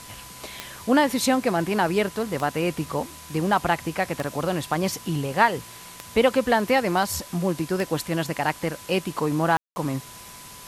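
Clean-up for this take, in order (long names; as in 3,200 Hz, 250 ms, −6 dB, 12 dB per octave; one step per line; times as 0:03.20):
click removal
notch filter 1,000 Hz, Q 30
ambience match 0:09.57–0:09.76
broadband denoise 26 dB, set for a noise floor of −43 dBFS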